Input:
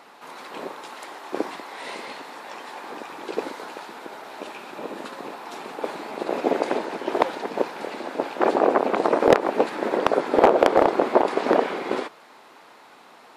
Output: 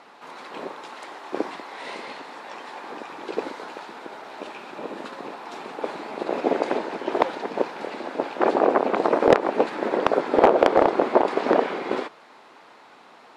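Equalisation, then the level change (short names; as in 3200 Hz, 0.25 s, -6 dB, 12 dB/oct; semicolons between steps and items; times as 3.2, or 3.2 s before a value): air absorption 51 m; 0.0 dB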